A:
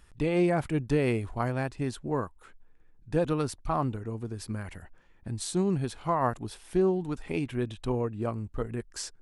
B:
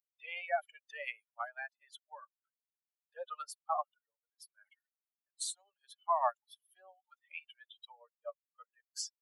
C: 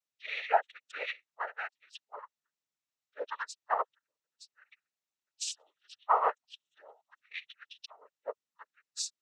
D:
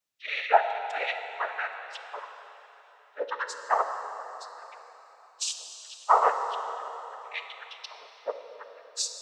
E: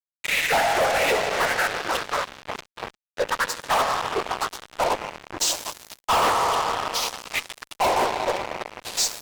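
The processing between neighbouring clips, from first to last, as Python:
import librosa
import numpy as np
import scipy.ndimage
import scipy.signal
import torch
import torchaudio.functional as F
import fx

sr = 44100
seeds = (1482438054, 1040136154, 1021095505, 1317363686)

y1 = fx.bin_expand(x, sr, power=3.0)
y1 = scipy.signal.sosfilt(scipy.signal.butter(16, 580.0, 'highpass', fs=sr, output='sos'), y1)
y1 = y1 * librosa.db_to_amplitude(2.0)
y2 = fx.noise_vocoder(y1, sr, seeds[0], bands=12)
y2 = y2 * librosa.db_to_amplitude(5.0)
y3 = fx.rev_plate(y2, sr, seeds[1], rt60_s=3.8, hf_ratio=0.9, predelay_ms=0, drr_db=6.0)
y3 = y3 * librosa.db_to_amplitude(5.5)
y4 = fx.echo_pitch(y3, sr, ms=126, semitones=-4, count=2, db_per_echo=-6.0)
y4 = fx.fuzz(y4, sr, gain_db=35.0, gate_db=-37.0)
y4 = y4 * librosa.db_to_amplitude(-4.5)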